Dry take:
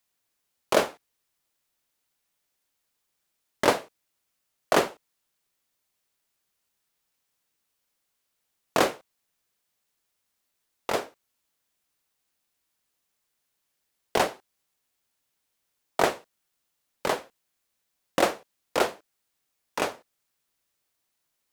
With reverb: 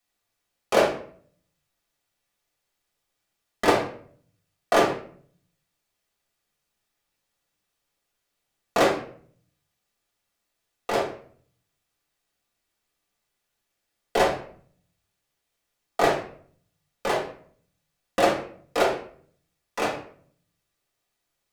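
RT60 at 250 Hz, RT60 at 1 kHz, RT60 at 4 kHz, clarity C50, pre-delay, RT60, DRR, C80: 0.75 s, 0.50 s, 0.40 s, 6.5 dB, 4 ms, 0.50 s, -4.5 dB, 12.0 dB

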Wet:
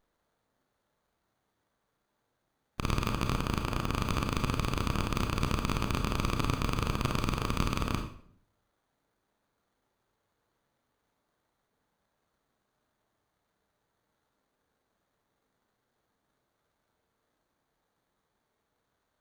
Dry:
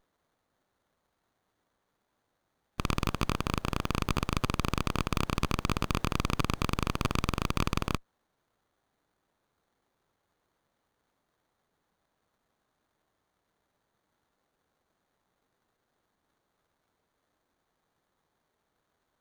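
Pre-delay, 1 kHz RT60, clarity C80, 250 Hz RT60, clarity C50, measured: 28 ms, 0.55 s, 11.0 dB, 0.75 s, 7.0 dB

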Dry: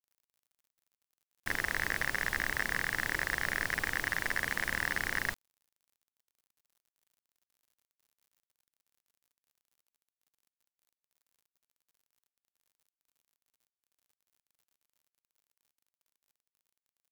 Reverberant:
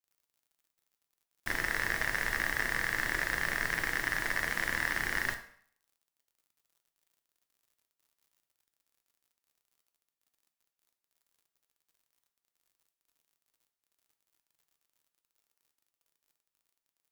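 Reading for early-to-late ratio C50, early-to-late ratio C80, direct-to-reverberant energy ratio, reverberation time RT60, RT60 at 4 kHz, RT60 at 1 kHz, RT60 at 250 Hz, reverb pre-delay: 11.0 dB, 14.5 dB, 5.0 dB, 0.60 s, 0.55 s, 0.60 s, 0.55 s, 3 ms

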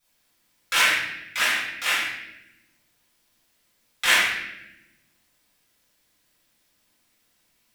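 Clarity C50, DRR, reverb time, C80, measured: 0.0 dB, -11.5 dB, 0.95 s, 3.5 dB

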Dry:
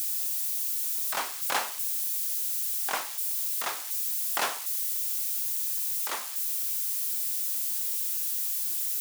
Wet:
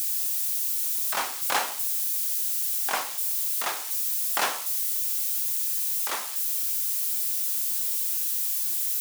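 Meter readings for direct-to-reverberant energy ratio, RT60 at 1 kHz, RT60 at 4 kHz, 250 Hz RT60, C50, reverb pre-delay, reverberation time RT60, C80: 9.0 dB, 0.45 s, 0.35 s, 0.60 s, 15.5 dB, 10 ms, 0.45 s, 20.0 dB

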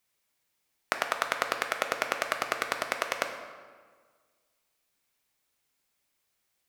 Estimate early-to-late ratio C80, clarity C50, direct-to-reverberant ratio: 8.5 dB, 7.0 dB, 5.0 dB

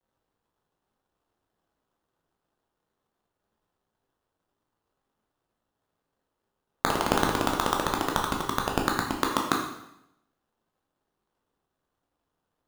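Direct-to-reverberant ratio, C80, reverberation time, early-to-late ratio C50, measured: 0.0 dB, 7.5 dB, 0.80 s, 5.0 dB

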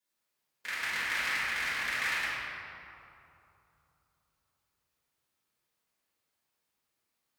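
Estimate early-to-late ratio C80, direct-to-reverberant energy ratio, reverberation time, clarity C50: -1.5 dB, -12.0 dB, 2.8 s, -3.5 dB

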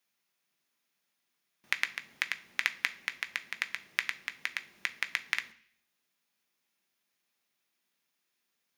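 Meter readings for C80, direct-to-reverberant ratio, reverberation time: 21.5 dB, 8.5 dB, 0.50 s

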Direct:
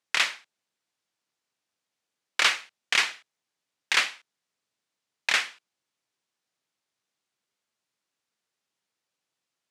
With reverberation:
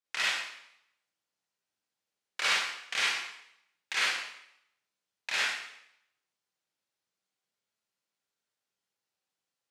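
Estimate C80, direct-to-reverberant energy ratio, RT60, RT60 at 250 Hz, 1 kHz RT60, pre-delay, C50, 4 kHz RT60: 2.0 dB, -7.5 dB, 0.75 s, 0.70 s, 0.75 s, 34 ms, -2.5 dB, 0.70 s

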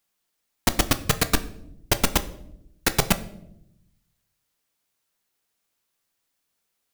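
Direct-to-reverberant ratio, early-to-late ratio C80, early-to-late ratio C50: 10.0 dB, 18.5 dB, 16.0 dB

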